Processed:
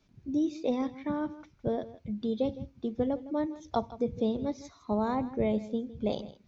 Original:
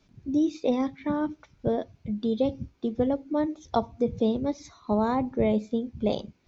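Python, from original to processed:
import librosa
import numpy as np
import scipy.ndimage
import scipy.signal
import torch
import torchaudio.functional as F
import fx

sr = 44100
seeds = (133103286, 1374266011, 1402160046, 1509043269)

y = x + 10.0 ** (-16.5 / 20.0) * np.pad(x, (int(160 * sr / 1000.0), 0))[:len(x)]
y = y * librosa.db_to_amplitude(-4.5)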